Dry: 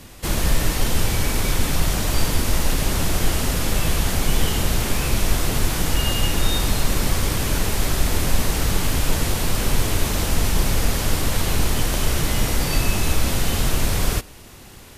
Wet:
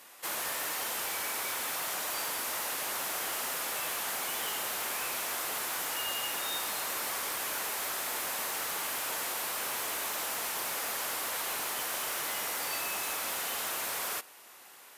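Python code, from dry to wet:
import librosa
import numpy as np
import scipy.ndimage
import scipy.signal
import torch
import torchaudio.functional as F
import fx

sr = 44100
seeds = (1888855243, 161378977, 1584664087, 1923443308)

y = scipy.signal.sosfilt(scipy.signal.butter(2, 990.0, 'highpass', fs=sr, output='sos'), x)
y = fx.peak_eq(y, sr, hz=4500.0, db=-9.5, octaves=3.0)
y = np.clip(y, -10.0 ** (-29.5 / 20.0), 10.0 ** (-29.5 / 20.0))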